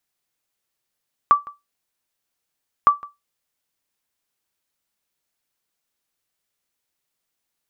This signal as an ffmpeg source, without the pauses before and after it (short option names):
-f lavfi -i "aevalsrc='0.596*(sin(2*PI*1160*mod(t,1.56))*exp(-6.91*mod(t,1.56)/0.19)+0.075*sin(2*PI*1160*max(mod(t,1.56)-0.16,0))*exp(-6.91*max(mod(t,1.56)-0.16,0)/0.19))':d=3.12:s=44100"